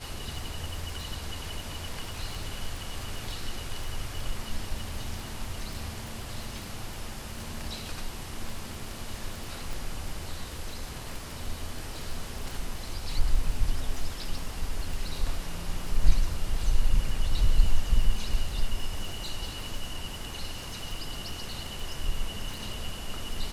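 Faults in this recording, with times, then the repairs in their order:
crackle 24 per s -33 dBFS
9.73 s: pop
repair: de-click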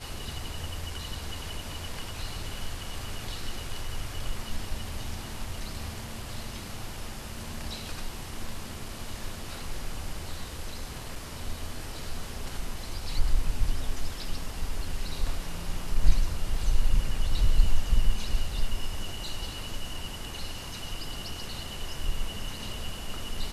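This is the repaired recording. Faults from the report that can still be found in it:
9.73 s: pop

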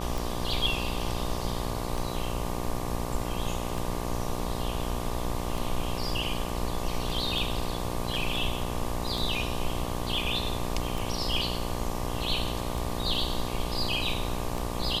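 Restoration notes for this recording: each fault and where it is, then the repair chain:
buzz 60 Hz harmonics 20 -34 dBFS
tick 33 1/3 rpm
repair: de-click; de-hum 60 Hz, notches 20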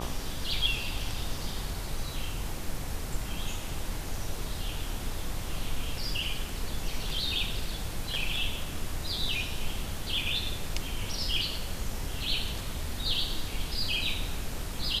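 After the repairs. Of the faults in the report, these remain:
nothing left

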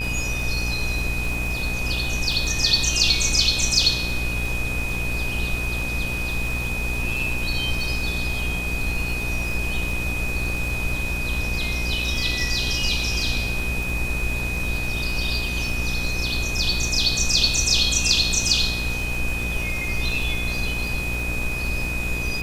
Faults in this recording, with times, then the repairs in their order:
buzz 60 Hz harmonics 39 -29 dBFS
crackle 50 per s -28 dBFS
whine 2.5 kHz -27 dBFS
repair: de-click; de-hum 60 Hz, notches 39; band-stop 2.5 kHz, Q 30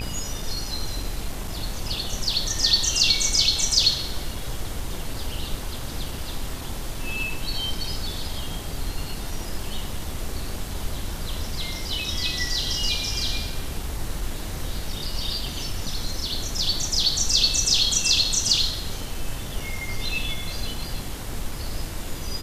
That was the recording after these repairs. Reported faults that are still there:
nothing left

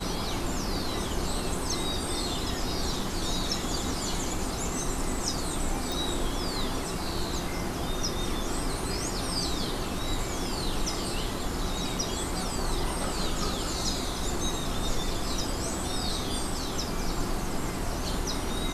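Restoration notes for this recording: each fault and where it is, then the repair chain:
5.92 s: pop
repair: de-click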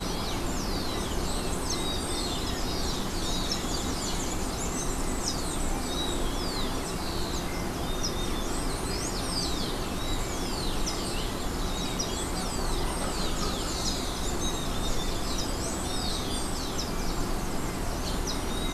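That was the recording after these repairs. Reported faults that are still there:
nothing left

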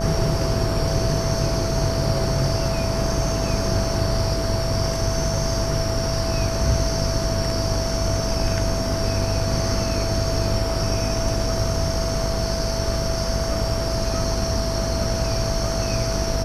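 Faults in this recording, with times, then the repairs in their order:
buzz 50 Hz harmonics 30 -27 dBFS
whine 660 Hz -27 dBFS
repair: de-hum 50 Hz, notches 30; band-stop 660 Hz, Q 30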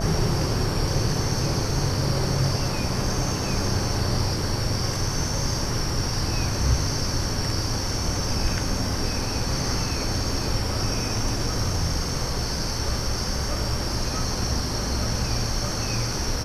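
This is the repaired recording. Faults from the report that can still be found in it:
nothing left

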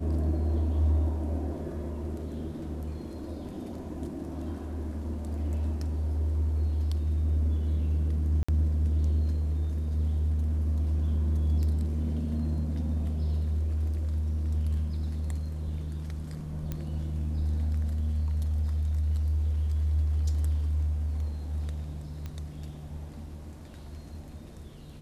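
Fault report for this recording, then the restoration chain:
8.43–8.48 s: dropout 55 ms
16.72 s: pop -20 dBFS
22.26 s: pop -25 dBFS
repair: de-click; interpolate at 8.43 s, 55 ms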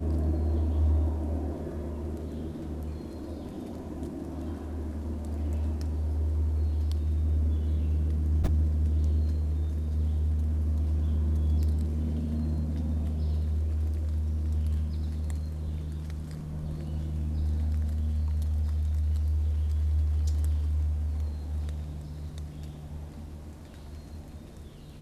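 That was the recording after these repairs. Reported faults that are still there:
nothing left

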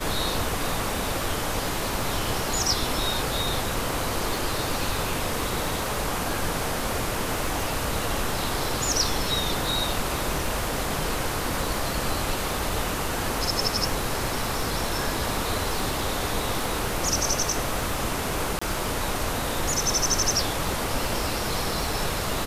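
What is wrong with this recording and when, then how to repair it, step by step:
crackle 27 per s -30 dBFS
18.59–18.61 s: dropout 25 ms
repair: de-click; interpolate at 18.59 s, 25 ms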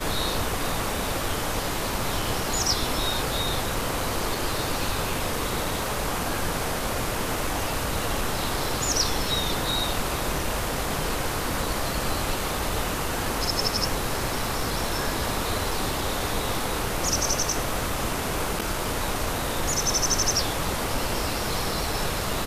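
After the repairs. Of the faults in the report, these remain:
nothing left

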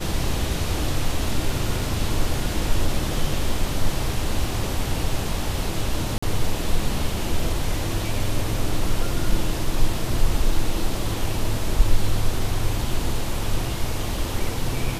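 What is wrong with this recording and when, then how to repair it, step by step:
6.18–6.22 s: dropout 45 ms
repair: interpolate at 6.18 s, 45 ms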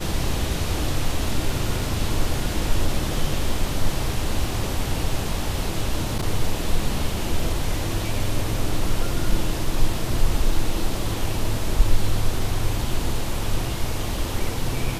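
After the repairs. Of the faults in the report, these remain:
nothing left

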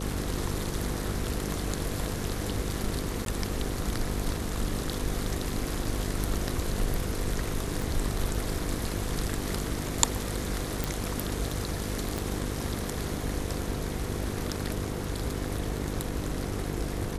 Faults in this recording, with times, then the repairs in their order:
buzz 50 Hz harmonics 10 -35 dBFS
3.25–3.26 s: dropout 12 ms
7.82 s: pop
10.84 s: pop
12.18 s: pop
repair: de-click; de-hum 50 Hz, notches 10; interpolate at 3.25 s, 12 ms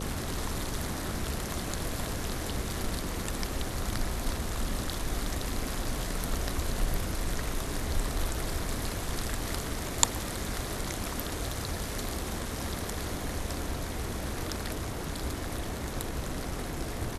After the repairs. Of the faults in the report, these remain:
7.82 s: pop
12.18 s: pop

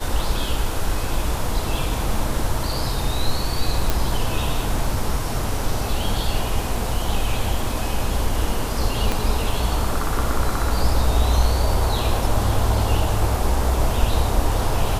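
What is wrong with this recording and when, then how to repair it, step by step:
3.90 s: pop
9.12 s: pop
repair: de-click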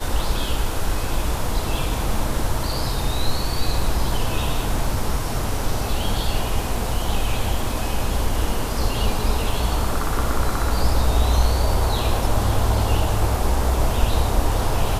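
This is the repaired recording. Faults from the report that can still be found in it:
9.12 s: pop

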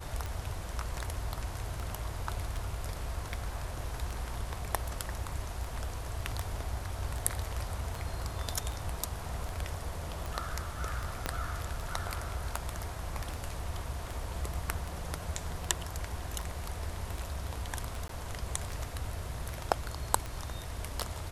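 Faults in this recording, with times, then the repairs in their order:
tick 78 rpm
11.26 s: pop -15 dBFS
18.08–18.09 s: dropout 13 ms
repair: de-click; interpolate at 18.08 s, 13 ms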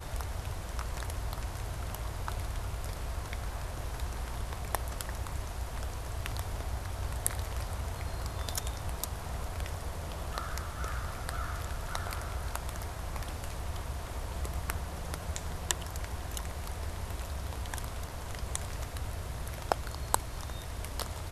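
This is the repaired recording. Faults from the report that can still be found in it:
11.26 s: pop

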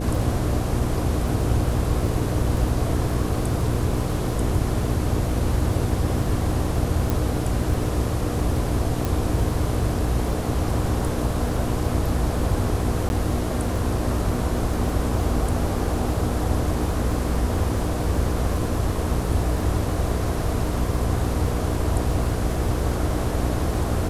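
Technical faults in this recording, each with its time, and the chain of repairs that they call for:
crackle 27 per s -30 dBFS
hum 60 Hz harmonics 8 -27 dBFS
7.10 s: pop
9.05 s: pop
13.09–13.10 s: dropout 11 ms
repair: de-click; de-hum 60 Hz, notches 8; interpolate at 13.09 s, 11 ms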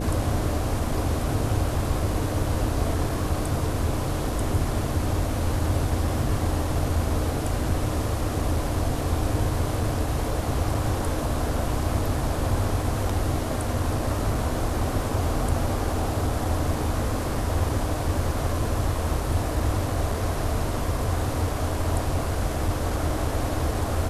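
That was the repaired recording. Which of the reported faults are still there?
7.10 s: pop

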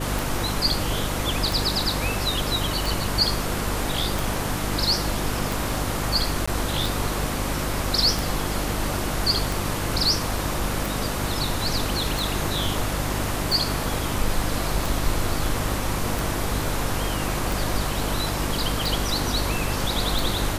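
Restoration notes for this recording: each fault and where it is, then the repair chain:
hum 50 Hz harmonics 7 -30 dBFS
tick 45 rpm
6.46–6.47 s: dropout 15 ms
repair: de-click; de-hum 50 Hz, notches 7; interpolate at 6.46 s, 15 ms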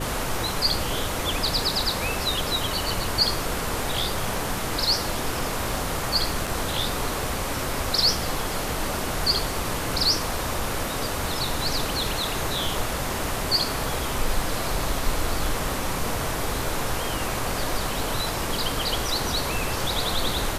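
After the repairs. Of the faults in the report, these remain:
nothing left

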